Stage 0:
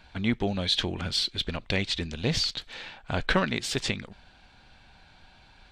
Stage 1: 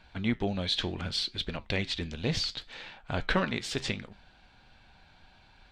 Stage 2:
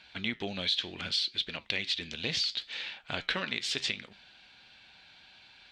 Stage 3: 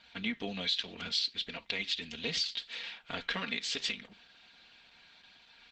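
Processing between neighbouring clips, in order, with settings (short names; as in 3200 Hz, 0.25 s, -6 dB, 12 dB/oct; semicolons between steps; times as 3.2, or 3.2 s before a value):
high shelf 8200 Hz -7.5 dB; flange 0.68 Hz, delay 5.1 ms, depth 7.6 ms, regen -79%; gain +1.5 dB
weighting filter D; compressor 2.5:1, threshold -27 dBFS, peak gain reduction 9 dB; gain -3 dB
comb 4.3 ms, depth 68%; gain -3 dB; Opus 12 kbps 48000 Hz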